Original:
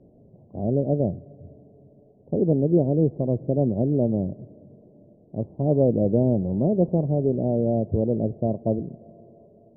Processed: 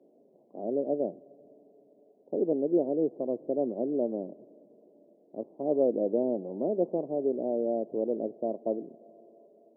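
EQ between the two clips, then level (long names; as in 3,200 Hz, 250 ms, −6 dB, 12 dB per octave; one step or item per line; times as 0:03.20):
high-pass filter 280 Hz 24 dB per octave
−4.0 dB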